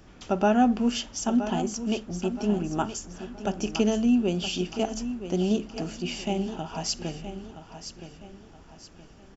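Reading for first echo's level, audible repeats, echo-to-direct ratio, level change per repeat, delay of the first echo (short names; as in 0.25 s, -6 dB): -11.0 dB, 3, -10.5 dB, -9.0 dB, 0.971 s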